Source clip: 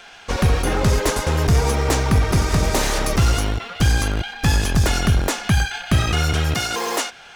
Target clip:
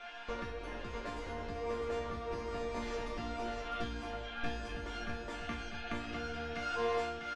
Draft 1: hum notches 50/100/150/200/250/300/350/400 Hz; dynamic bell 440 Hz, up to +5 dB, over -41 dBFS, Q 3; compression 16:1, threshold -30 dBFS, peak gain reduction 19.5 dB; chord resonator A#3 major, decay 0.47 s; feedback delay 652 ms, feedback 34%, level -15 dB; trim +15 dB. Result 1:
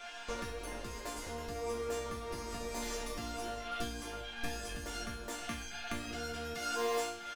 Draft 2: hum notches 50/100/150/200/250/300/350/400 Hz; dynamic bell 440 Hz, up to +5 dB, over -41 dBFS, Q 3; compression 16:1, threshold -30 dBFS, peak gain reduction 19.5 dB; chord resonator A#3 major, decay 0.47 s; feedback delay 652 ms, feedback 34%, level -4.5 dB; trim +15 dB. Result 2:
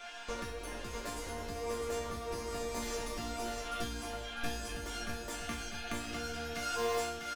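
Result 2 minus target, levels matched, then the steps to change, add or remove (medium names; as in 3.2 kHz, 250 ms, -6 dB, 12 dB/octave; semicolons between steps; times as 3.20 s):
4 kHz band +3.5 dB
add after compression: low-pass 3.2 kHz 12 dB/octave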